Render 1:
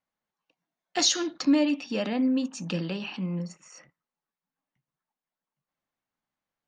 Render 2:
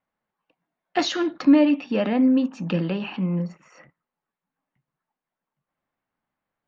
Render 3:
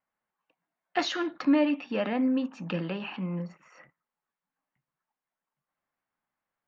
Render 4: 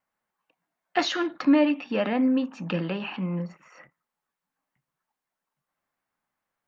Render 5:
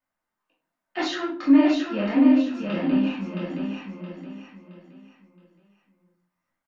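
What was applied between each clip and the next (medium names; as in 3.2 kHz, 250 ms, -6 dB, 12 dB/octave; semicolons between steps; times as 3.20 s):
low-pass 2.3 kHz 12 dB/octave; trim +6.5 dB
peaking EQ 1.5 kHz +7 dB 2.8 oct; trim -9 dB
endings held to a fixed fall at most 370 dB/s; trim +3.5 dB
chorus 1.7 Hz, delay 18.5 ms, depth 7.3 ms; feedback delay 670 ms, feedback 34%, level -5 dB; simulated room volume 250 m³, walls furnished, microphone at 2.7 m; trim -3.5 dB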